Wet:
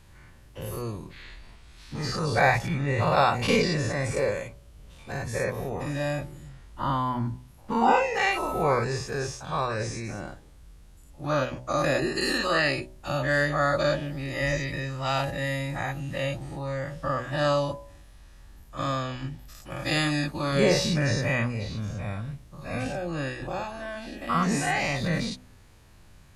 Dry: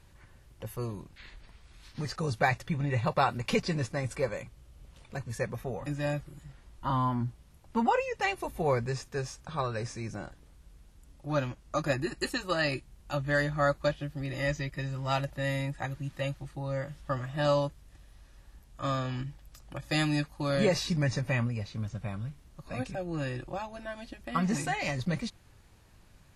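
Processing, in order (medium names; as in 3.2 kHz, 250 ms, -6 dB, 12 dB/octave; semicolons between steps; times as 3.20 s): every event in the spectrogram widened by 120 ms; de-hum 62.68 Hz, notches 16; 8.34–8.83 s: whistle 1.3 kHz -33 dBFS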